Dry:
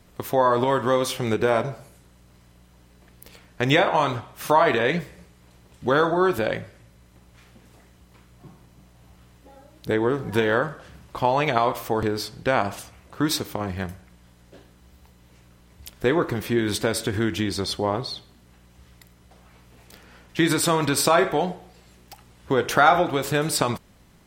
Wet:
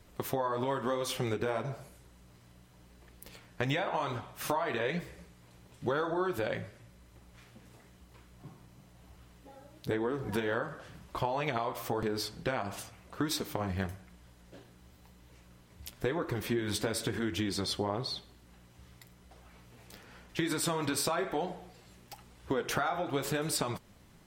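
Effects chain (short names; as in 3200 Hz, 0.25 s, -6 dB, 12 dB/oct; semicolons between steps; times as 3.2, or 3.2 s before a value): compressor 12:1, threshold -24 dBFS, peak gain reduction 14 dB; flange 0.98 Hz, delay 1.8 ms, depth 9.1 ms, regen -43%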